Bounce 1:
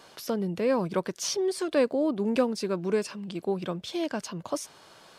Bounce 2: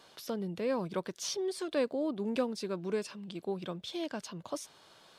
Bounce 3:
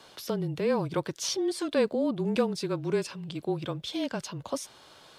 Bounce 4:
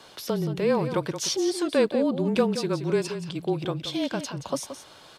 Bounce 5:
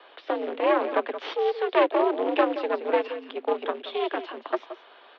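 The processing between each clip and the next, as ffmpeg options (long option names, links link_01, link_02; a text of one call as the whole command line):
ffmpeg -i in.wav -af "equalizer=frequency=3600:width=3:gain=5,volume=-7dB" out.wav
ffmpeg -i in.wav -af "afreqshift=-27,volume=5.5dB" out.wav
ffmpeg -i in.wav -af "aecho=1:1:175:0.299,volume=3.5dB" out.wav
ffmpeg -i in.wav -af "aeval=exprs='0.335*(cos(1*acos(clip(val(0)/0.335,-1,1)))-cos(1*PI/2))+0.119*(cos(4*acos(clip(val(0)/0.335,-1,1)))-cos(4*PI/2))':channel_layout=same,acrusher=bits=4:mode=log:mix=0:aa=0.000001,highpass=frequency=230:width_type=q:width=0.5412,highpass=frequency=230:width_type=q:width=1.307,lowpass=frequency=3200:width_type=q:width=0.5176,lowpass=frequency=3200:width_type=q:width=0.7071,lowpass=frequency=3200:width_type=q:width=1.932,afreqshift=91" out.wav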